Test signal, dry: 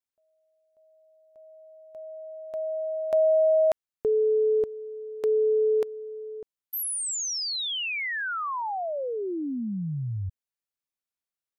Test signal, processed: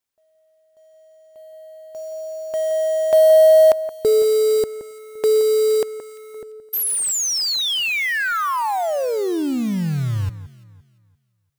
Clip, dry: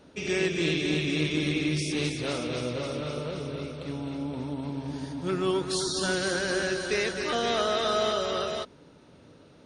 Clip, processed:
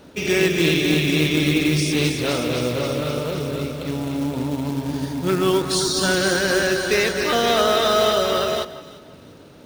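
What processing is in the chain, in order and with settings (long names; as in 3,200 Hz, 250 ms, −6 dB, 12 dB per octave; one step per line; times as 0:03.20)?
floating-point word with a short mantissa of 2 bits
delay that swaps between a low-pass and a high-pass 172 ms, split 2,000 Hz, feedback 51%, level −12.5 dB
level +8.5 dB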